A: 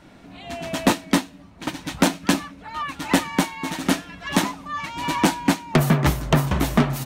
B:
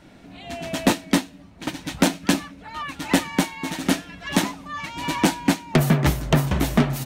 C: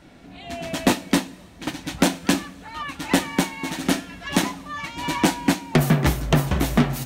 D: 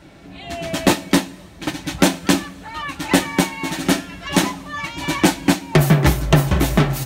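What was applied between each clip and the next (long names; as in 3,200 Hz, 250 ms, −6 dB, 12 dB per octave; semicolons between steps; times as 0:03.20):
parametric band 1,100 Hz −4 dB 0.74 octaves
coupled-rooms reverb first 0.26 s, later 2.1 s, from −18 dB, DRR 11 dB
notch comb filter 240 Hz; level +5.5 dB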